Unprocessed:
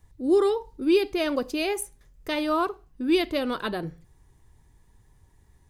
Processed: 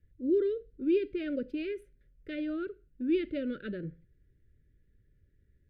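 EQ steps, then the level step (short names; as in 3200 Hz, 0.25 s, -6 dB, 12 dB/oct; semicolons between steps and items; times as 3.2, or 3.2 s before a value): Chebyshev band-stop 580–1400 Hz, order 4; air absorption 470 m; dynamic EQ 190 Hz, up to +5 dB, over -37 dBFS, Q 1; -7.0 dB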